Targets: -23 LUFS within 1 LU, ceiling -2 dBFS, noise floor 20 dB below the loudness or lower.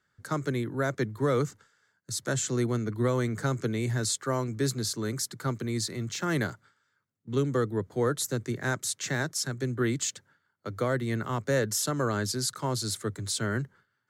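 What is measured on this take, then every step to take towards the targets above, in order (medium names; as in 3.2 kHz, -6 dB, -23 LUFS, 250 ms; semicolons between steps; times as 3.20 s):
loudness -30.0 LUFS; peak level -15.0 dBFS; loudness target -23.0 LUFS
-> trim +7 dB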